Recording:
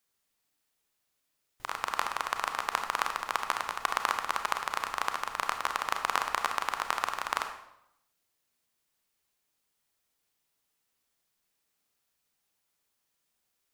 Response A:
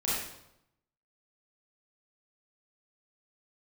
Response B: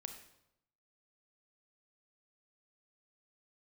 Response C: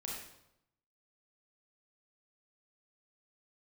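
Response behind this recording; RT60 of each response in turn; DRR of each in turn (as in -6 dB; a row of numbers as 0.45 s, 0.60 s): B; 0.85 s, 0.85 s, 0.85 s; -8.5 dB, 5.5 dB, -3.5 dB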